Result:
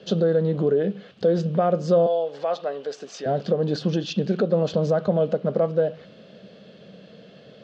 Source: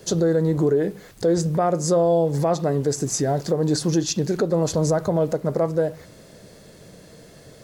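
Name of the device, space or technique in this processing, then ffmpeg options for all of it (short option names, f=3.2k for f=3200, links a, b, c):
kitchen radio: -filter_complex "[0:a]asettb=1/sr,asplit=3[a][b][c];[a]atrim=end=2.064[d];[b]atrim=start=2.06:end=3.26,asetpts=PTS-STARTPTS,afade=t=in:d=0.004:c=qsin,afade=t=out:st=1.196:d=0.004:c=qsin,highpass=610[e];[c]atrim=start=3.256[f];[d][e]acrossfade=d=0.004:c1=hsin:c2=qsin[g];[g][f]acrossfade=d=0.004:c1=qsin:c2=hsin,highpass=180,equalizer=f=200:t=q:w=4:g=8,equalizer=f=320:t=q:w=4:g=-7,equalizer=f=550:t=q:w=4:g=3,equalizer=f=940:t=q:w=4:g=-9,equalizer=f=2k:t=q:w=4:g=-7,equalizer=f=3k:t=q:w=4:g=8,lowpass=f=3.9k:w=0.5412,lowpass=f=3.9k:w=1.3066"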